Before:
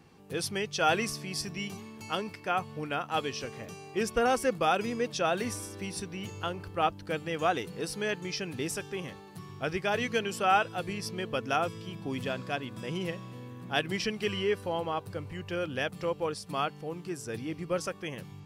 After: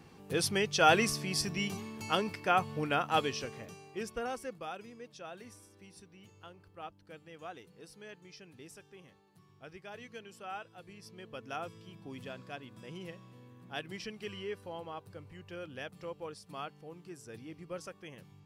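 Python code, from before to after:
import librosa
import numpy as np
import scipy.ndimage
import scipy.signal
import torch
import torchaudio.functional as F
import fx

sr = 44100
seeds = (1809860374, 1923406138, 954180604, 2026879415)

y = fx.gain(x, sr, db=fx.line((3.12, 2.0), (3.91, -8.0), (4.93, -18.0), (10.78, -18.0), (11.6, -11.0)))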